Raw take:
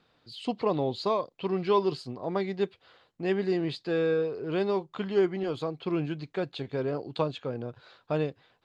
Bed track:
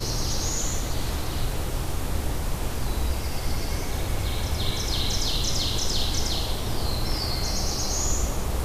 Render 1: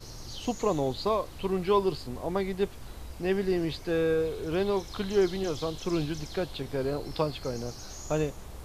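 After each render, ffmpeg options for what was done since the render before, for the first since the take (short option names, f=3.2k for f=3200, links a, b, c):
-filter_complex "[1:a]volume=-16.5dB[a];[0:a][a]amix=inputs=2:normalize=0"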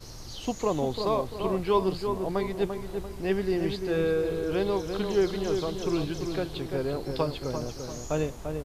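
-filter_complex "[0:a]asplit=2[a][b];[b]adelay=343,lowpass=f=1.5k:p=1,volume=-5.5dB,asplit=2[c][d];[d]adelay=343,lowpass=f=1.5k:p=1,volume=0.47,asplit=2[e][f];[f]adelay=343,lowpass=f=1.5k:p=1,volume=0.47,asplit=2[g][h];[h]adelay=343,lowpass=f=1.5k:p=1,volume=0.47,asplit=2[i][j];[j]adelay=343,lowpass=f=1.5k:p=1,volume=0.47,asplit=2[k][l];[l]adelay=343,lowpass=f=1.5k:p=1,volume=0.47[m];[a][c][e][g][i][k][m]amix=inputs=7:normalize=0"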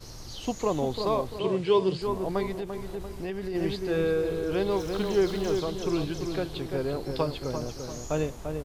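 -filter_complex "[0:a]asettb=1/sr,asplit=3[a][b][c];[a]atrim=end=1.394[d];[b]atrim=start=1.39:end=2.02,asetpts=PTS-STARTPTS,afade=t=in:d=0.004:c=qsin,afade=t=out:st=0.626:d=0.004:c=qsin,highpass=f=100:w=0.5412,highpass=f=100:w=1.3066,equalizer=f=140:t=q:w=4:g=7,equalizer=f=220:t=q:w=4:g=-4,equalizer=f=430:t=q:w=4:g=4,equalizer=f=740:t=q:w=4:g=-7,equalizer=f=1.2k:t=q:w=4:g=-6,equalizer=f=3.1k:t=q:w=4:g=6,lowpass=f=9k:w=0.5412,lowpass=f=9k:w=1.3066[e];[c]atrim=start=2.016[f];[d][e]acrossfade=d=0.004:c1=hsin:c2=qsin[g];[g][f]acrossfade=d=0.004:c1=qsin:c2=hsin,asplit=3[h][i][j];[h]afade=t=out:st=2.58:d=0.02[k];[i]acompressor=threshold=-29dB:ratio=10:attack=3.2:release=140:knee=1:detection=peak,afade=t=in:st=2.58:d=0.02,afade=t=out:st=3.54:d=0.02[l];[j]afade=t=in:st=3.54:d=0.02[m];[k][l][m]amix=inputs=3:normalize=0,asettb=1/sr,asplit=3[n][o][p];[n]atrim=end=4.714[q];[o]atrim=start=4.71:end=5.6,asetpts=PTS-STARTPTS,afade=t=in:d=0.004:c=qsin,afade=t=out:st=0.886:d=0.004:c=qsin,aeval=exprs='val(0)+0.5*0.00944*sgn(val(0))':c=same[r];[p]atrim=start=5.596[s];[q][r]acrossfade=d=0.004:c1=hsin:c2=qsin[t];[t][s]acrossfade=d=0.004:c1=qsin:c2=hsin"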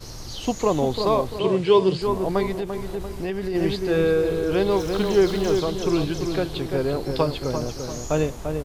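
-af "volume=6dB"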